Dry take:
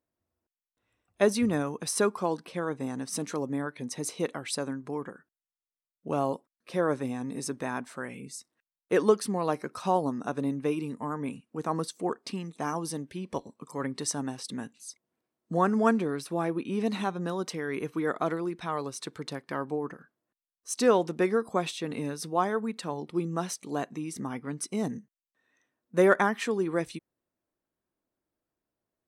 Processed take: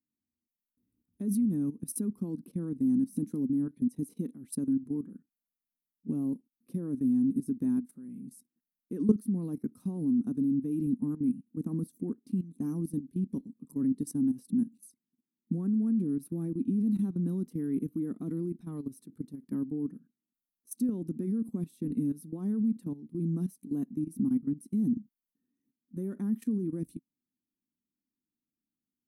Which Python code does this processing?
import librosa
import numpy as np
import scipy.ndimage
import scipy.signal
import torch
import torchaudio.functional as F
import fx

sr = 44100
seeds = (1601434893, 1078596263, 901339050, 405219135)

y = fx.peak_eq(x, sr, hz=220.0, db=6.5, octaves=0.86)
y = fx.level_steps(y, sr, step_db=16)
y = fx.curve_eq(y, sr, hz=(120.0, 260.0, 620.0, 2700.0, 7600.0, 11000.0), db=(0, 8, -22, -24, -14, 5))